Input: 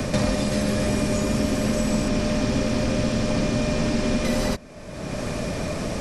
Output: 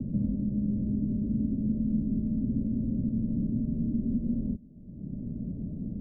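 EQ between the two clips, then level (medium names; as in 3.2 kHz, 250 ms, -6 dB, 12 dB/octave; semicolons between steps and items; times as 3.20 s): four-pole ladder low-pass 280 Hz, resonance 40%; 0.0 dB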